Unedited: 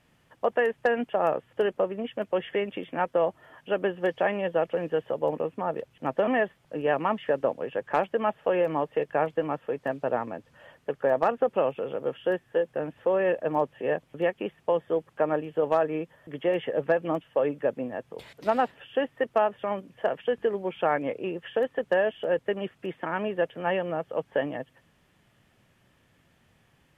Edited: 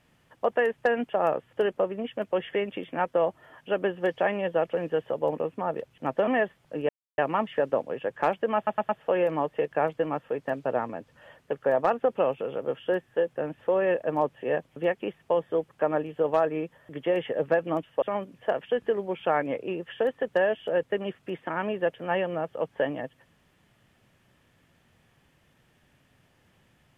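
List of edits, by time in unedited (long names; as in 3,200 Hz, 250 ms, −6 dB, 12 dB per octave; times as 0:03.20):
0:06.89: splice in silence 0.29 s
0:08.27: stutter 0.11 s, 4 plays
0:17.40–0:19.58: remove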